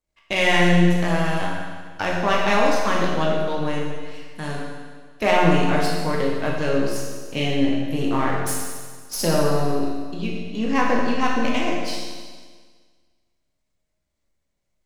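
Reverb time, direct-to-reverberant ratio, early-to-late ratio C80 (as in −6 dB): 1.6 s, −3.0 dB, 2.5 dB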